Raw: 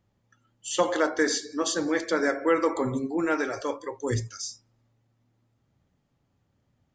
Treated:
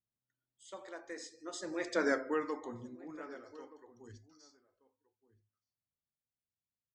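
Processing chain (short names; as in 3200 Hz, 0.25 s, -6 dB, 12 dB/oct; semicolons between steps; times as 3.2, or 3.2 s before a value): Doppler pass-by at 2.06, 27 m/s, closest 4.4 m; outdoor echo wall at 210 m, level -18 dB; gain -5.5 dB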